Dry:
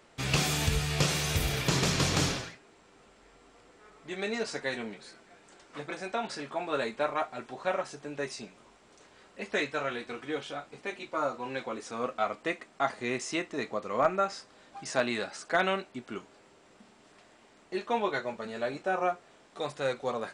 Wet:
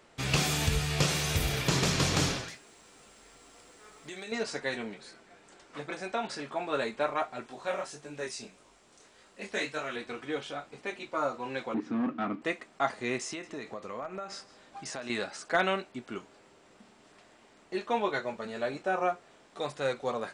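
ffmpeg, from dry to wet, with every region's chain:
-filter_complex "[0:a]asettb=1/sr,asplit=3[a][b][c];[a]atrim=end=2.484[d];[b]atrim=start=2.48:end=4.32,asetpts=PTS-STARTPTS,afade=t=in:d=0.004:c=qsin,afade=t=out:st=1.836:d=0.004:c=qsin,aemphasis=mode=production:type=75kf,acompressor=threshold=-38dB:ratio=12:attack=3.2:release=140:knee=1:detection=peak,asplit=2[e][f];[f]adelay=14,volume=-14dB[g];[e][g]amix=inputs=2:normalize=0,atrim=end_sample=81144[h];[c]atrim=start=4.316[i];[d][h]acrossfade=d=0.004:c1=hsin:c2=qsin[j];[j][i]acrossfade=d=0.004:c1=qsin:c2=hsin,asettb=1/sr,asplit=3[k][l][m];[k]atrim=end=7.484[n];[l]atrim=start=7.48:end=9.96,asetpts=PTS-STARTPTS,afade=t=in:d=0.004:c=qsin,afade=t=out:st=2.476:d=0.004:c=qsin,flanger=delay=19:depth=7.4:speed=1.7,aemphasis=mode=production:type=cd[o];[m]atrim=start=9.956[p];[n][o]acrossfade=d=0.004:c1=hsin:c2=qsin[q];[q][p]acrossfade=d=0.004:c1=qsin:c2=hsin,asettb=1/sr,asplit=3[r][s][t];[r]atrim=end=11.744[u];[s]atrim=start=11.74:end=12.42,asetpts=PTS-STARTPTS,afade=t=in:d=0.004:c=qsin,afade=t=out:st=0.676:d=0.004:c=qsin,lowshelf=f=390:t=q:w=3:g=10,asoftclip=type=hard:threshold=-26dB,highpass=140,lowpass=2.4k[v];[t]atrim=start=12.416[w];[u][v]acrossfade=d=0.004:c1=hsin:c2=qsin[x];[x][w]acrossfade=d=0.004:c1=qsin:c2=hsin,asettb=1/sr,asplit=3[y][z][aa];[y]atrim=end=13.274[ab];[z]atrim=start=13.27:end=15.1,asetpts=PTS-STARTPTS,afade=t=in:d=0.004:c=qsin,afade=t=out:st=1.826:d=0.004:c=qsin,acompressor=threshold=-35dB:ratio=6:attack=3.2:release=140:knee=1:detection=peak,aecho=1:1:161:0.106,atrim=end_sample=80703[ac];[aa]atrim=start=15.096[ad];[ab][ac]acrossfade=d=0.004:c1=hsin:c2=qsin[ae];[ae][ad]acrossfade=d=0.004:c1=qsin:c2=hsin"

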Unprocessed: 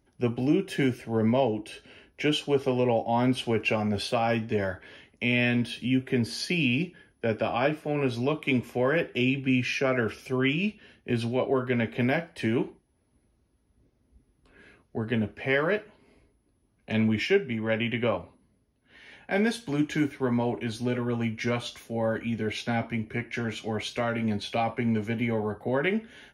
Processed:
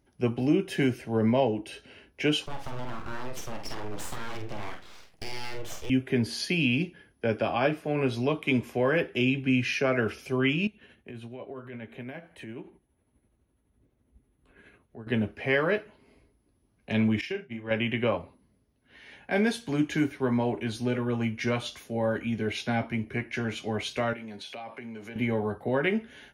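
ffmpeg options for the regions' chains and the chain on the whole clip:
-filter_complex "[0:a]asettb=1/sr,asplit=3[a][b][c];[a]atrim=end=2.464[d];[b]atrim=start=2.46:end=5.9,asetpts=PTS-STARTPTS,afade=t=in:d=0.004:c=qsin,afade=t=out:st=3.436:d=0.004:c=qsin,acompressor=threshold=-30dB:ratio=10:attack=3.2:release=140:knee=1:detection=peak,aeval=exprs='abs(val(0))':c=same,asplit=2[e][f];[f]adelay=48,volume=-6dB[g];[e][g]amix=inputs=2:normalize=0,atrim=end_sample=151704[h];[c]atrim=start=5.896[i];[d][h]acrossfade=d=0.004:c1=hsin:c2=qsin[j];[j][i]acrossfade=d=0.004:c1=qsin:c2=hsin,asettb=1/sr,asplit=3[k][l][m];[k]atrim=end=10.674[n];[l]atrim=start=10.67:end=15.07,asetpts=PTS-STARTPTS,afade=t=in:d=0.004:c=qsin,afade=t=out:st=4.396:d=0.004:c=qsin,equalizer=f=5k:t=o:w=0.34:g=-15,acompressor=threshold=-46dB:ratio=2:attack=3.2:release=140:knee=1:detection=peak,tremolo=f=12:d=0.37[o];[m]atrim=start=15.066[p];[n][o]acrossfade=d=0.004:c1=hsin:c2=qsin[q];[q][p]acrossfade=d=0.004:c1=qsin:c2=hsin,asettb=1/sr,asplit=3[r][s][t];[r]atrim=end=17.214[u];[s]atrim=start=17.21:end=17.71,asetpts=PTS-STARTPTS,afade=t=in:d=0.004:c=qsin,afade=t=out:st=0.496:d=0.004:c=qsin,agate=range=-33dB:threshold=-24dB:ratio=3:release=100:detection=peak,acompressor=threshold=-29dB:ratio=6:attack=3.2:release=140:knee=1:detection=peak,asplit=2[v][w];[w]adelay=39,volume=-7dB[x];[v][x]amix=inputs=2:normalize=0,atrim=end_sample=22050[y];[t]atrim=start=17.706[z];[u][y]acrossfade=d=0.004:c1=hsin:c2=qsin[aa];[aa][z]acrossfade=d=0.004:c1=qsin:c2=hsin,asettb=1/sr,asplit=3[ab][ac][ad];[ab]atrim=end=24.134[ae];[ac]atrim=start=24.13:end=25.16,asetpts=PTS-STARTPTS,afade=t=in:d=0.004:c=qsin,afade=t=out:st=1.026:d=0.004:c=qsin,highpass=f=380:p=1,acompressor=threshold=-38dB:ratio=5:attack=3.2:release=140:knee=1:detection=peak[af];[ad]atrim=start=25.156[ag];[ae][af]acrossfade=d=0.004:c1=hsin:c2=qsin[ah];[ah][ag]acrossfade=d=0.004:c1=qsin:c2=hsin"

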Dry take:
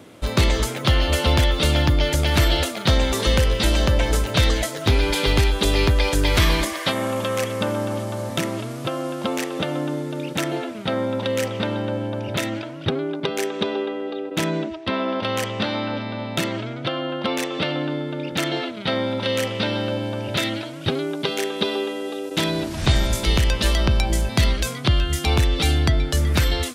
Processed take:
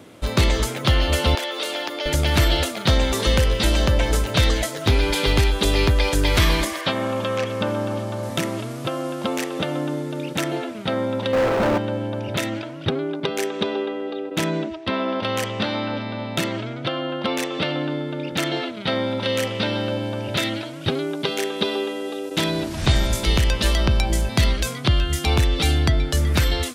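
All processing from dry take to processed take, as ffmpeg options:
-filter_complex "[0:a]asettb=1/sr,asplit=3[a][b][c];[a]atrim=end=1.354[d];[b]atrim=start=1.35:end=2.06,asetpts=PTS-STARTPTS,afade=t=in:d=0.004:c=qsin,afade=t=out:st=0.706:d=0.004:c=qsin,highpass=f=360:w=0.5412,highpass=f=360:w=1.3066,acompressor=threshold=-25dB:ratio=2:attack=3.2:release=140:knee=1:detection=peak[e];[c]atrim=start=2.056[f];[d][e]acrossfade=d=0.004:c1=hsin:c2=qsin[g];[g][f]acrossfade=d=0.004:c1=qsin:c2=hsin,asettb=1/sr,asplit=3[h][i][j];[h]atrim=end=6.814[k];[i]atrim=start=6.81:end=8.23,asetpts=PTS-STARTPTS,afade=t=in:d=0.004:c=qsin,afade=t=out:st=1.416:d=0.004:c=qsin,acrossover=split=5400[l][m];[m]acompressor=threshold=-51dB:ratio=4:attack=1:release=60[n];[l][n]amix=inputs=2:normalize=0,bandreject=f=2k:w=16[o];[j]atrim=start=8.226[p];[k][o]acrossfade=d=0.004:c1=hsin:c2=qsin[q];[q][p]acrossfade=d=0.004:c1=qsin:c2=hsin,asettb=1/sr,asplit=3[r][s][t];[r]atrim=end=11.334[u];[s]atrim=start=11.33:end=11.78,asetpts=PTS-STARTPTS,afade=t=in:d=0.004:c=qsin,afade=t=out:st=0.446:d=0.004:c=qsin,lowpass=1.7k,acrusher=bits=5:dc=4:mix=0:aa=0.000001,asplit=2[v][w];[w]highpass=f=720:p=1,volume=35dB,asoftclip=type=tanh:threshold=-11.5dB[x];[v][x]amix=inputs=2:normalize=0,lowpass=f=1.2k:p=1,volume=-6dB[y];[t]atrim=start=11.776[z];[u][y]acrossfade=d=0.004:c1=hsin:c2=qsin[aa];[aa][z]acrossfade=d=0.004:c1=qsin:c2=hsin"

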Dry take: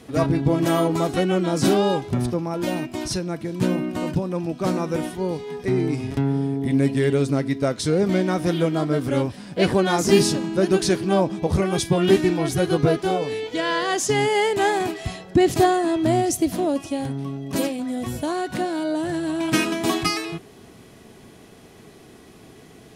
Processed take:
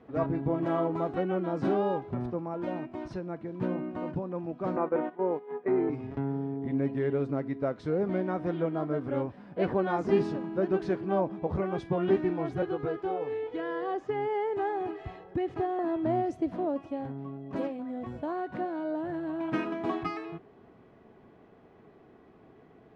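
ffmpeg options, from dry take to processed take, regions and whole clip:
-filter_complex "[0:a]asettb=1/sr,asplit=3[a][b][c];[a]atrim=end=4.764[d];[b]atrim=start=4.76:end=5.9,asetpts=PTS-STARTPTS,afade=t=in:d=0.004:c=qsin,afade=t=out:st=1.136:d=0.004:c=qsin,highpass=320,lowpass=2.1k,acontrast=82,agate=range=-11dB:threshold=-27dB:ratio=16:release=100:detection=peak[e];[c]atrim=start=5.896[f];[d][e]acrossfade=d=0.004:c1=hsin:c2=qsin[g];[g][f]acrossfade=d=0.004:c1=qsin:c2=hsin,asettb=1/sr,asplit=3[h][i][j];[h]atrim=end=12.624[k];[i]atrim=start=12.62:end=15.79,asetpts=PTS-STARTPTS,afade=t=in:d=0.004:c=qsin,afade=t=out:st=3.166:d=0.004:c=qsin,aecho=1:1:2.4:0.52,atrim=end_sample=139797,acrossover=split=1000|3000[l][m][n];[l]acompressor=threshold=-21dB:ratio=4[o];[m]acompressor=threshold=-33dB:ratio=4[p];[n]acompressor=threshold=-40dB:ratio=4[q];[o][p][q]amix=inputs=3:normalize=0[r];[j]atrim=start=15.786[s];[k][r]acrossfade=d=0.004:c1=hsin:c2=qsin[t];[t][s]acrossfade=d=0.004:c1=qsin:c2=hsin,lowpass=1.3k,lowshelf=f=290:g=-7.5,volume=-5.5dB"

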